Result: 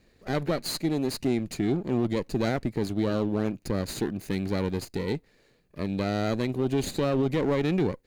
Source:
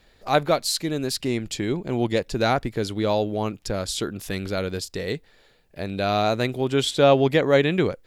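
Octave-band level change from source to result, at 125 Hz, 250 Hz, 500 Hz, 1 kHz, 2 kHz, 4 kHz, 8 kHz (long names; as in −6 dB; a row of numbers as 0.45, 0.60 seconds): −2.0, −0.5, −6.5, −10.0, −8.5, −9.5, −8.0 decibels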